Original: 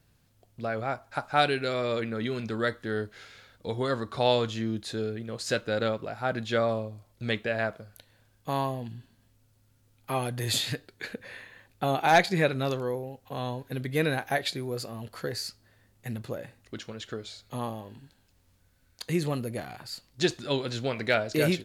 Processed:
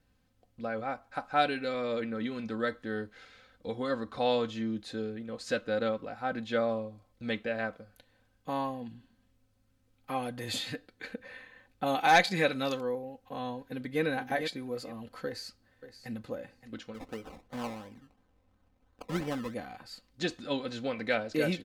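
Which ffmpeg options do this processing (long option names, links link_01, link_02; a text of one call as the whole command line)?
ffmpeg -i in.wav -filter_complex "[0:a]asettb=1/sr,asplit=3[link_01][link_02][link_03];[link_01]atrim=end=11.864[link_04];[link_02]atrim=start=11.86:end=12.81,asetpts=PTS-STARTPTS,afade=type=in:duration=0.004:curve=qsin,afade=type=out:start_time=0.946:duration=0.004:curve=qsin,highshelf=frequency=2000:gain=9.5[link_05];[link_03]atrim=start=12.806[link_06];[link_04][link_05]acrossfade=duration=0.004:curve1=hsin:curve2=qsin[link_07];[link_07][link_06]acrossfade=duration=0.004:curve1=qsin:curve2=hsin,asplit=2[link_08][link_09];[link_09]afade=type=in:start_time=13.6:duration=0.01,afade=type=out:start_time=14.02:duration=0.01,aecho=0:1:450|900|1350:0.446684|0.0893367|0.0178673[link_10];[link_08][link_10]amix=inputs=2:normalize=0,asplit=2[link_11][link_12];[link_12]afade=type=in:start_time=15.25:duration=0.01,afade=type=out:start_time=16.19:duration=0.01,aecho=0:1:570|1140:0.237137|0.0237137[link_13];[link_11][link_13]amix=inputs=2:normalize=0,asettb=1/sr,asplit=3[link_14][link_15][link_16];[link_14]atrim=end=16.944[link_17];[link_15]atrim=start=16.94:end=19.54,asetpts=PTS-STARTPTS,afade=type=in:duration=0.004:curve=qsin,afade=type=out:start_time=2.596:duration=0.004:curve=qsin,acrusher=samples=23:mix=1:aa=0.000001:lfo=1:lforange=13.8:lforate=2.9[link_18];[link_16]atrim=start=19.536[link_19];[link_17][link_18]acrossfade=duration=0.004:curve1=hsin:curve2=qsin[link_20];[link_20][link_19]acrossfade=duration=0.004:curve1=qsin:curve2=hsin,aemphasis=mode=reproduction:type=cd,aecho=1:1:3.9:0.61,volume=-5dB" out.wav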